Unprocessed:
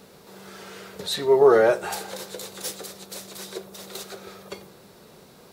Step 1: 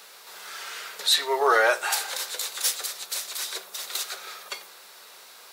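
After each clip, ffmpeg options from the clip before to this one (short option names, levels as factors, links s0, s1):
-af "highpass=1200,volume=2.51"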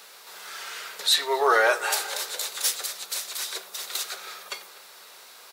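-filter_complex "[0:a]asplit=2[s0][s1];[s1]adelay=242,lowpass=f=2000:p=1,volume=0.15,asplit=2[s2][s3];[s3]adelay=242,lowpass=f=2000:p=1,volume=0.55,asplit=2[s4][s5];[s5]adelay=242,lowpass=f=2000:p=1,volume=0.55,asplit=2[s6][s7];[s7]adelay=242,lowpass=f=2000:p=1,volume=0.55,asplit=2[s8][s9];[s9]adelay=242,lowpass=f=2000:p=1,volume=0.55[s10];[s0][s2][s4][s6][s8][s10]amix=inputs=6:normalize=0"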